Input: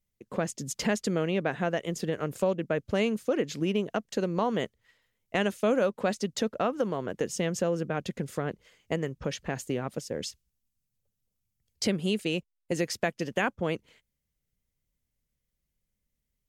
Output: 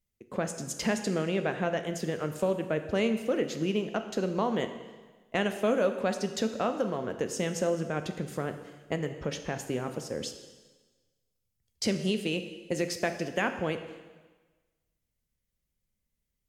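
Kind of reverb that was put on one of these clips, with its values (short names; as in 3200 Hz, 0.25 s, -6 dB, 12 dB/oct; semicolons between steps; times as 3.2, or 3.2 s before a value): plate-style reverb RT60 1.3 s, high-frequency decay 1×, DRR 7 dB; gain -1.5 dB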